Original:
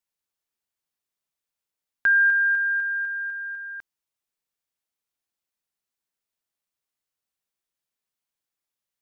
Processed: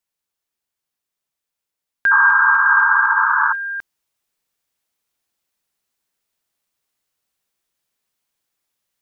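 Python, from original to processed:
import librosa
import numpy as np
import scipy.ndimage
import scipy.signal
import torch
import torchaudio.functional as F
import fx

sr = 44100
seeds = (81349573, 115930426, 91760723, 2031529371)

y = fx.rider(x, sr, range_db=3, speed_s=0.5)
y = fx.spec_paint(y, sr, seeds[0], shape='noise', start_s=2.11, length_s=1.42, low_hz=850.0, high_hz=1700.0, level_db=-24.0)
y = F.gain(torch.from_numpy(y), 7.0).numpy()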